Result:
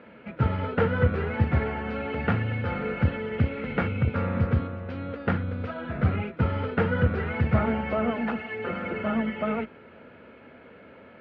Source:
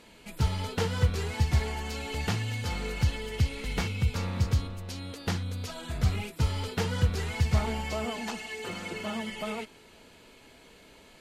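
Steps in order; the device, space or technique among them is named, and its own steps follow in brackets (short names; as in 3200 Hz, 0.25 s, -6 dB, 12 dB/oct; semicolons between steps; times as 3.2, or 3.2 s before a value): sub-octave bass pedal (octaver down 2 oct, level -3 dB; speaker cabinet 84–2300 Hz, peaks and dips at 230 Hz +6 dB, 540 Hz +8 dB, 970 Hz -3 dB, 1400 Hz +8 dB); gain +4 dB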